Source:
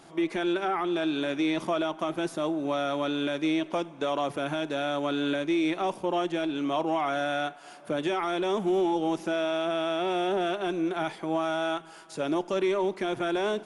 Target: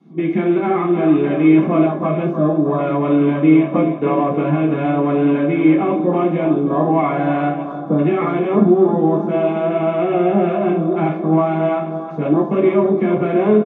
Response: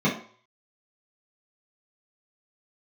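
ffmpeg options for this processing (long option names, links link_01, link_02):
-filter_complex "[0:a]lowpass=8800,aecho=1:1:312|624|936|1248|1560|1872|2184:0.335|0.198|0.117|0.0688|0.0406|0.0239|0.0141,acrossover=split=340|1400|3500[link_01][link_02][link_03][link_04];[link_04]alimiter=level_in=17dB:limit=-24dB:level=0:latency=1,volume=-17dB[link_05];[link_01][link_02][link_03][link_05]amix=inputs=4:normalize=0,afwtdn=0.0141[link_06];[1:a]atrim=start_sample=2205[link_07];[link_06][link_07]afir=irnorm=-1:irlink=0,volume=-6.5dB"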